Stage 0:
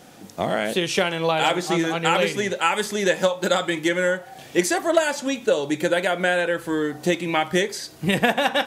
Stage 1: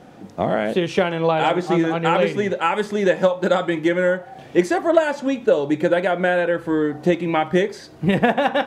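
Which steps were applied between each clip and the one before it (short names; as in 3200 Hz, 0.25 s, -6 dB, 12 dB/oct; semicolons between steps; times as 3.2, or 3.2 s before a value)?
LPF 1100 Hz 6 dB/oct; gain +4.5 dB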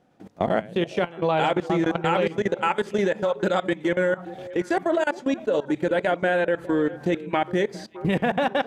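level quantiser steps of 21 dB; delay with a stepping band-pass 0.205 s, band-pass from 160 Hz, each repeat 1.4 oct, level -11 dB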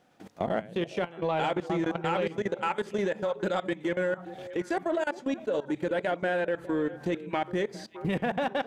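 in parallel at -8 dB: soft clip -22 dBFS, distortion -11 dB; on the sum: mismatched tape noise reduction encoder only; gain -8 dB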